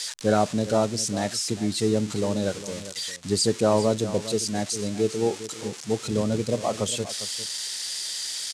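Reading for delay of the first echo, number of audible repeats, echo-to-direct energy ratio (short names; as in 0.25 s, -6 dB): 0.403 s, 1, -14.0 dB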